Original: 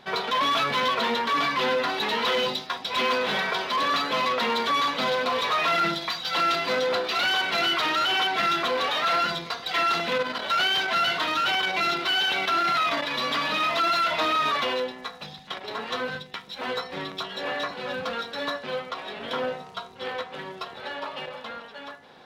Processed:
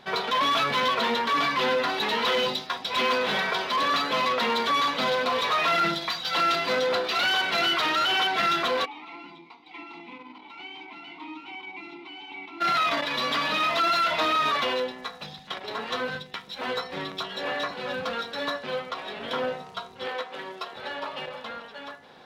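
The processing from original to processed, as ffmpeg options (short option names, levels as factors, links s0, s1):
-filter_complex "[0:a]asplit=3[s0][s1][s2];[s0]afade=t=out:st=8.84:d=0.02[s3];[s1]asplit=3[s4][s5][s6];[s4]bandpass=f=300:t=q:w=8,volume=1[s7];[s5]bandpass=f=870:t=q:w=8,volume=0.501[s8];[s6]bandpass=f=2240:t=q:w=8,volume=0.355[s9];[s7][s8][s9]amix=inputs=3:normalize=0,afade=t=in:st=8.84:d=0.02,afade=t=out:st=12.6:d=0.02[s10];[s2]afade=t=in:st=12.6:d=0.02[s11];[s3][s10][s11]amix=inputs=3:normalize=0,asettb=1/sr,asplit=3[s12][s13][s14];[s12]atrim=end=20.074[s15];[s13]atrim=start=20.07:end=20.76,asetpts=PTS-STARTPTS,afade=t=in:d=0.004:c=qsin,afade=t=out:st=0.686:d=0.004:c=qsin,highpass=260[s16];[s14]atrim=start=20.756[s17];[s15][s16]acrossfade=d=0.004:c1=hsin:c2=qsin[s18];[s18][s17]acrossfade=d=0.004:c1=qsin:c2=hsin"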